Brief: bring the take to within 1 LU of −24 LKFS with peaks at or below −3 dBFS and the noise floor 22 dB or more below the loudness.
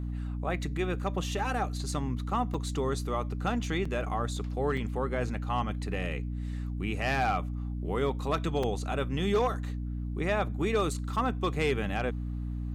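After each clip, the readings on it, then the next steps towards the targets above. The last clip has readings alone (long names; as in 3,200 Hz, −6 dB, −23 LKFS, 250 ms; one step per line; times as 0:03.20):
number of dropouts 4; longest dropout 4.3 ms; mains hum 60 Hz; hum harmonics up to 300 Hz; level of the hum −32 dBFS; integrated loudness −31.5 LKFS; sample peak −17.0 dBFS; target loudness −24.0 LKFS
→ repair the gap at 0:02.54/0:03.85/0:04.77/0:08.63, 4.3 ms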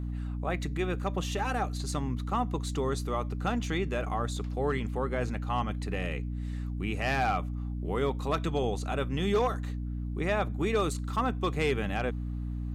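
number of dropouts 0; mains hum 60 Hz; hum harmonics up to 300 Hz; level of the hum −32 dBFS
→ hum removal 60 Hz, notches 5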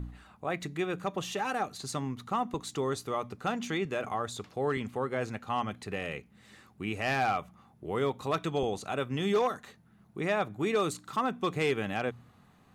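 mains hum none found; integrated loudness −32.5 LKFS; sample peak −19.0 dBFS; target loudness −24.0 LKFS
→ level +8.5 dB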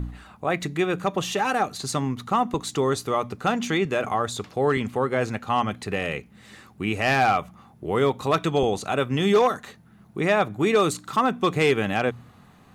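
integrated loudness −24.0 LKFS; sample peak −10.5 dBFS; background noise floor −53 dBFS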